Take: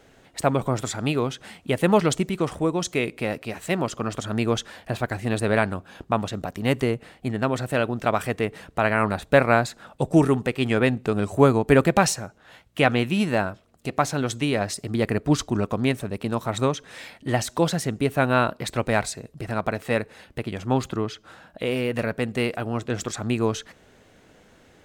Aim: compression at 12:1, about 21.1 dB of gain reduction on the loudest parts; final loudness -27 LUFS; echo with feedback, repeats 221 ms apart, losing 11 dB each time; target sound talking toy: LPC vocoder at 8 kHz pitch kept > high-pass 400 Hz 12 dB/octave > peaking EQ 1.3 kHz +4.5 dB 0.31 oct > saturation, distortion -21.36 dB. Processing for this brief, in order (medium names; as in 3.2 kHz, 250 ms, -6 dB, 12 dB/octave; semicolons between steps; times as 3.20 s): compression 12:1, threshold -33 dBFS; feedback delay 221 ms, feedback 28%, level -11 dB; LPC vocoder at 8 kHz pitch kept; high-pass 400 Hz 12 dB/octave; peaking EQ 1.3 kHz +4.5 dB 0.31 oct; saturation -25 dBFS; trim +16 dB